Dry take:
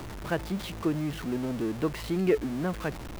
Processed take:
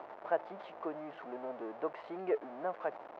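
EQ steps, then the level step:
four-pole ladder band-pass 780 Hz, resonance 45%
high-frequency loss of the air 59 metres
+8.0 dB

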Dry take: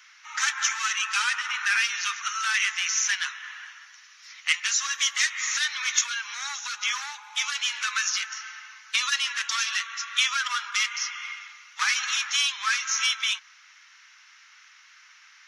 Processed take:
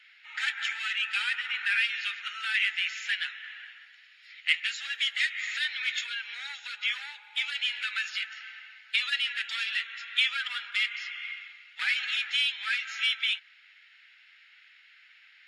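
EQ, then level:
high-frequency loss of the air 72 metres
high-shelf EQ 11,000 Hz +11.5 dB
phaser with its sweep stopped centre 2,600 Hz, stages 4
0.0 dB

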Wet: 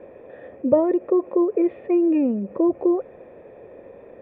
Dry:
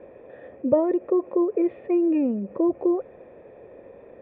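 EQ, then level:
mains-hum notches 60/120 Hz
+2.5 dB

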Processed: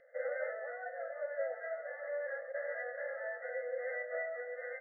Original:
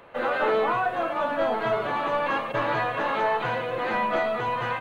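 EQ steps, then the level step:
linear-phase brick-wall band-pass 480–2,100 Hz
Butterworth band-reject 1,000 Hz, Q 0.52
high-frequency loss of the air 290 metres
+1.0 dB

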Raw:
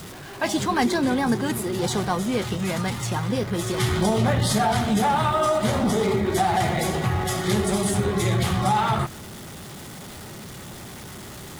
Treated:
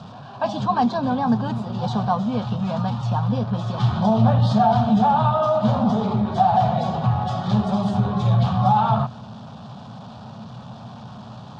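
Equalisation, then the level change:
loudspeaker in its box 100–4,200 Hz, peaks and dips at 120 Hz +9 dB, 220 Hz +8 dB, 360 Hz +6 dB, 700 Hz +6 dB, 1,000 Hz +4 dB, 2,200 Hz +5 dB
parametric band 250 Hz +3 dB 1.5 octaves
phaser with its sweep stopped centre 860 Hz, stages 4
0.0 dB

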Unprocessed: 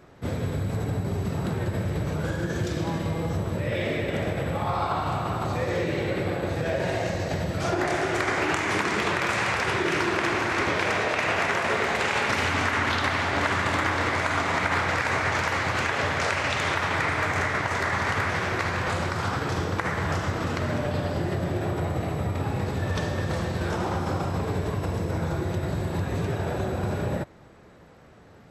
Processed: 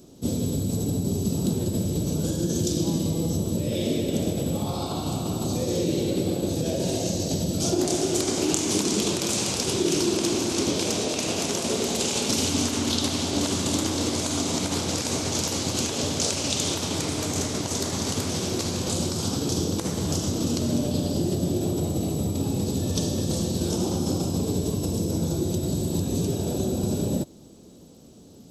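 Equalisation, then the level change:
drawn EQ curve 120 Hz 0 dB, 250 Hz +10 dB, 1,900 Hz −18 dB, 3,100 Hz +3 dB, 6,400 Hz +15 dB
−1.0 dB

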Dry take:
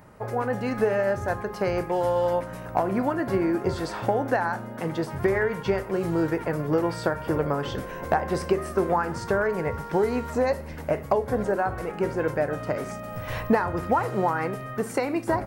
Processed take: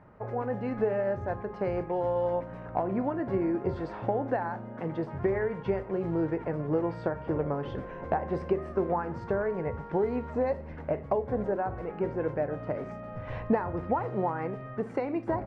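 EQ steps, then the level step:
low-pass filter 1,900 Hz 12 dB per octave
dynamic equaliser 1,400 Hz, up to −6 dB, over −42 dBFS, Q 1.5
−4.0 dB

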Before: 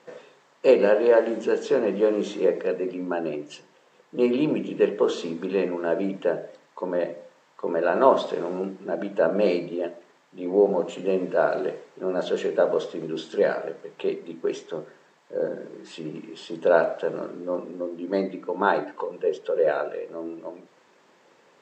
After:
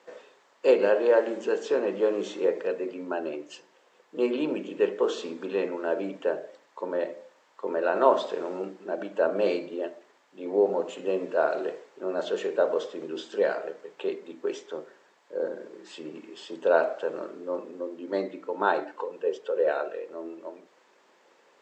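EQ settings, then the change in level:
high-pass filter 300 Hz 12 dB per octave
−2.5 dB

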